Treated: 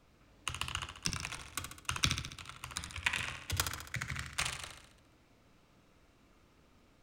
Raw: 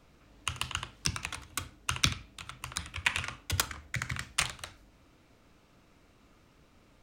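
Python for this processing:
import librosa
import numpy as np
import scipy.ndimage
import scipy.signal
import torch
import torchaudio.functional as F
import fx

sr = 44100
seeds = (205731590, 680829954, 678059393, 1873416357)

p1 = x + fx.echo_feedback(x, sr, ms=69, feedback_pct=57, wet_db=-7.0, dry=0)
p2 = fx.buffer_crackle(p1, sr, first_s=0.48, period_s=0.3, block=256, kind='repeat')
y = p2 * 10.0 ** (-4.5 / 20.0)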